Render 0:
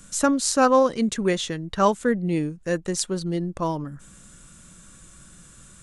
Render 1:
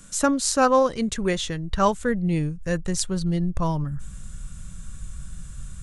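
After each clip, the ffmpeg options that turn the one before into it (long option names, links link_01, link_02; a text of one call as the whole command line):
ffmpeg -i in.wav -af "asubboost=boost=11.5:cutoff=100" out.wav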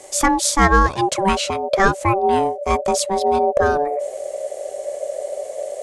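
ffmpeg -i in.wav -filter_complex "[0:a]asplit=2[link_01][link_02];[link_02]alimiter=limit=-13.5dB:level=0:latency=1:release=258,volume=-2dB[link_03];[link_01][link_03]amix=inputs=2:normalize=0,aeval=exprs='val(0)*sin(2*PI*580*n/s)':channel_layout=same,volume=4dB" out.wav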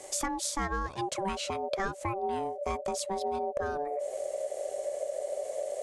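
ffmpeg -i in.wav -af "acompressor=threshold=-25dB:ratio=5,volume=-5dB" out.wav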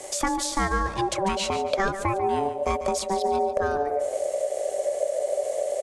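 ffmpeg -i in.wav -filter_complex "[0:a]acrossover=split=570|4900[link_01][link_02][link_03];[link_03]alimiter=level_in=3.5dB:limit=-24dB:level=0:latency=1:release=301,volume=-3.5dB[link_04];[link_01][link_02][link_04]amix=inputs=3:normalize=0,aecho=1:1:144|288|432|576:0.251|0.103|0.0422|0.0173,volume=7.5dB" out.wav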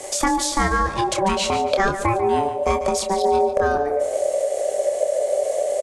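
ffmpeg -i in.wav -filter_complex "[0:a]asplit=2[link_01][link_02];[link_02]adelay=27,volume=-8dB[link_03];[link_01][link_03]amix=inputs=2:normalize=0,volume=4.5dB" out.wav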